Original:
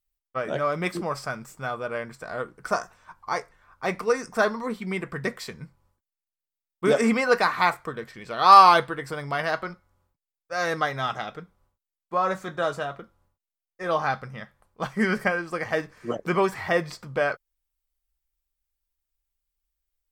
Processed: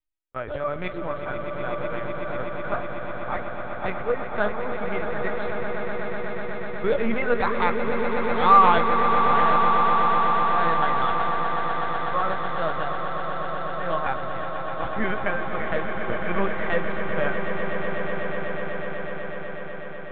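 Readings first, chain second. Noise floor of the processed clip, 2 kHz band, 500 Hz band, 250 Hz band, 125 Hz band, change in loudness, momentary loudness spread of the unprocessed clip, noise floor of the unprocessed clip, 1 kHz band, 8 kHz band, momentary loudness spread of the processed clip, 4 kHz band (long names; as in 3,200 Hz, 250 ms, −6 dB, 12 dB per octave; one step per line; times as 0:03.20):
−31 dBFS, +0.5 dB, +1.5 dB, +0.5 dB, +1.5 dB, 0.0 dB, 14 LU, below −85 dBFS, +1.5 dB, below −35 dB, 12 LU, −3.5 dB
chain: linear-prediction vocoder at 8 kHz pitch kept
echo that builds up and dies away 124 ms, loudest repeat 8, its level −9.5 dB
level −2.5 dB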